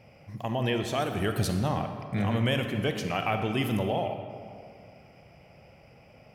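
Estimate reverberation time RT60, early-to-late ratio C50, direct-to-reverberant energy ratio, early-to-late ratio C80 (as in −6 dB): 2.2 s, 6.5 dB, 6.0 dB, 7.5 dB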